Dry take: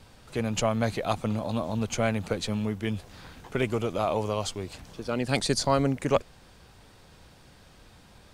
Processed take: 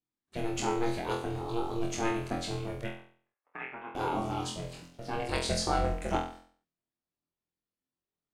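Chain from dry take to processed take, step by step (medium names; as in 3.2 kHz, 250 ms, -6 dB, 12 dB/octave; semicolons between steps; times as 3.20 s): 2.87–3.95 s: Chebyshev band-pass 600–2300 Hz, order 3; gate -45 dBFS, range -38 dB; ring modulator 230 Hz; flutter echo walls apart 4 m, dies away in 0.48 s; trim -4.5 dB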